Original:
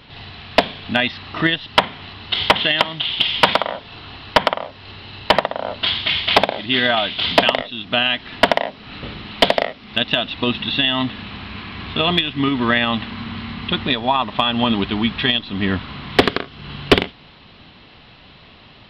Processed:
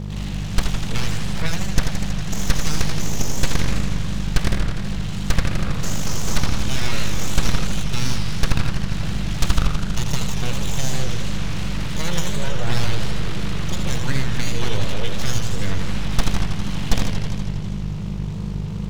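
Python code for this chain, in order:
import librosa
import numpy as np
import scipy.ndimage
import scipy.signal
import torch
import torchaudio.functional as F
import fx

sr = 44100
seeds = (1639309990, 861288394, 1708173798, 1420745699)

p1 = np.abs(x)
p2 = fx.bass_treble(p1, sr, bass_db=7, treble_db=1)
p3 = fx.dmg_buzz(p2, sr, base_hz=50.0, harmonics=4, level_db=-27.0, tilt_db=-2, odd_only=False)
p4 = fx.fuzz(p3, sr, gain_db=27.0, gate_db=-34.0)
p5 = p3 + (p4 * librosa.db_to_amplitude(-6.0))
p6 = fx.echo_warbled(p5, sr, ms=81, feedback_pct=79, rate_hz=2.8, cents=203, wet_db=-6.5)
y = p6 * librosa.db_to_amplitude(-8.5)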